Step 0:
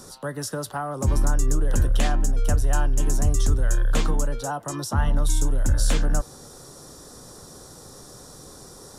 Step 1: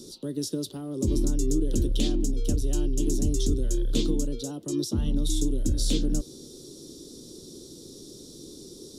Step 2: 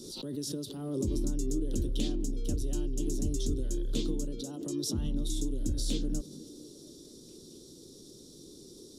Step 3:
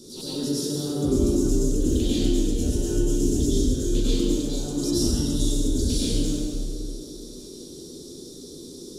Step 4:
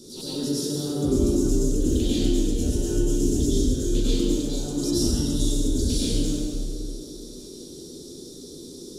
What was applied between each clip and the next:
FFT filter 120 Hz 0 dB, 350 Hz +14 dB, 770 Hz -15 dB, 1.7 kHz -17 dB, 3.6 kHz +10 dB, 8.2 kHz +1 dB; trim -6 dB
repeats whose band climbs or falls 231 ms, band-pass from 190 Hz, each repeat 0.7 oct, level -10.5 dB; swell ahead of each attack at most 38 dB/s; trim -7 dB
plate-style reverb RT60 2.1 s, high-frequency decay 0.75×, pre-delay 85 ms, DRR -10 dB
band-stop 1.1 kHz, Q 27

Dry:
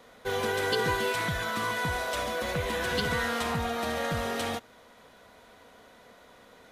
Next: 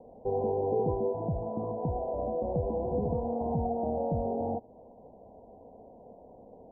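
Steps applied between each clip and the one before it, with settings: steep low-pass 860 Hz 72 dB/octave; in parallel at -2 dB: compression, threshold -41 dBFS, peak gain reduction 14.5 dB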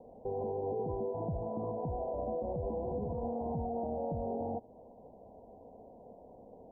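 peak limiter -26.5 dBFS, peak gain reduction 8.5 dB; trim -2 dB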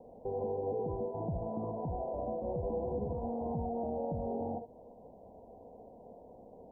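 reverberation, pre-delay 48 ms, DRR 11.5 dB

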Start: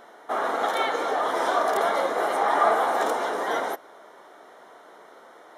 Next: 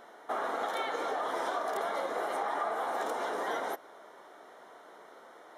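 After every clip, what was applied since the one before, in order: compression, threshold -26 dBFS, peak gain reduction 10.5 dB; trim -4 dB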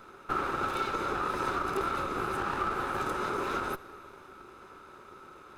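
comb filter that takes the minimum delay 0.79 ms; small resonant body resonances 380/560/1300 Hz, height 11 dB, ringing for 35 ms; reverberation RT60 3.3 s, pre-delay 49 ms, DRR 18 dB

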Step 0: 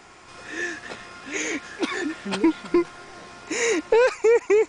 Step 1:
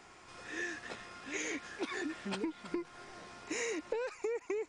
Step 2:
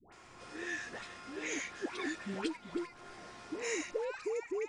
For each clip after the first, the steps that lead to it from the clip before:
compression 12:1, threshold -25 dBFS, peak gain reduction 12 dB; trim -8.5 dB
phase dispersion highs, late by 124 ms, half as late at 830 Hz

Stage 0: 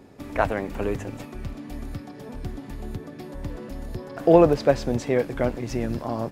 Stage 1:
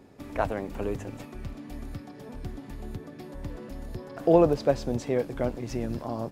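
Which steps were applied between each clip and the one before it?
dynamic bell 1.9 kHz, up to -5 dB, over -42 dBFS, Q 1.2; trim -4 dB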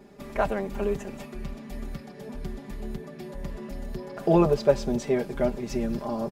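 comb 5 ms, depth 94%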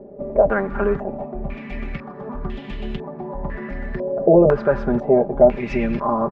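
loudness maximiser +14.5 dB; step-sequenced low-pass 2 Hz 560–3000 Hz; trim -8 dB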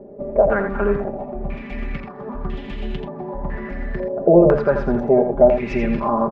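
delay 84 ms -7.5 dB

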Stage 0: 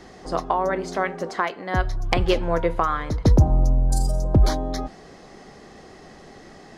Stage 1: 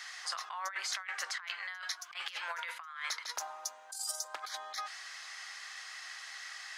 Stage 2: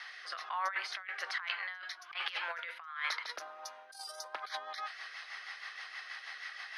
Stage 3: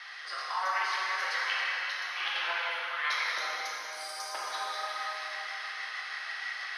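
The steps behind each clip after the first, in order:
high-pass 1.4 kHz 24 dB/octave; compressor with a negative ratio -42 dBFS, ratio -1; trim +1.5 dB
boxcar filter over 6 samples; rotary cabinet horn 1.2 Hz, later 6.3 Hz, at 3.41 s; trim +5.5 dB
plate-style reverb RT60 3.6 s, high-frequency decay 0.95×, DRR -6.5 dB

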